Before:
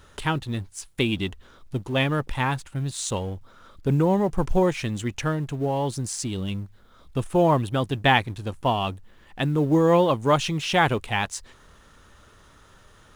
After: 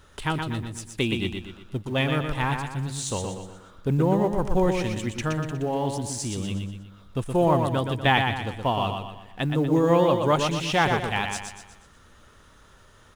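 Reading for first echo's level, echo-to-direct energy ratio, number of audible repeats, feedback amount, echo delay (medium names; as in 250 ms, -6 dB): -5.5 dB, -4.5 dB, 5, 44%, 121 ms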